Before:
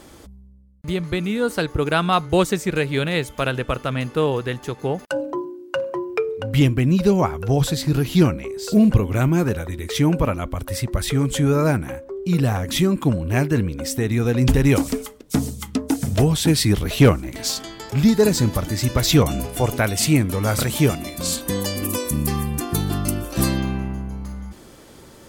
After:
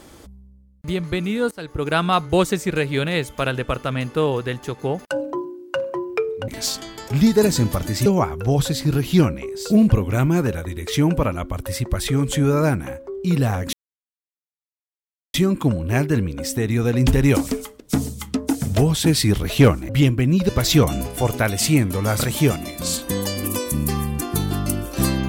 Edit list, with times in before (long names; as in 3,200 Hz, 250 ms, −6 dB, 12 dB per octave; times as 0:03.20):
0:01.51–0:01.96: fade in, from −21 dB
0:06.48–0:07.08: swap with 0:17.30–0:18.88
0:12.75: splice in silence 1.61 s